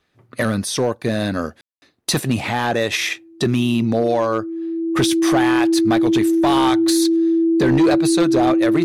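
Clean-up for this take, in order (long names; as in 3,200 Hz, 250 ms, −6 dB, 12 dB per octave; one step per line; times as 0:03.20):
clipped peaks rebuilt −10 dBFS
notch filter 330 Hz, Q 30
ambience match 0:01.61–0:01.82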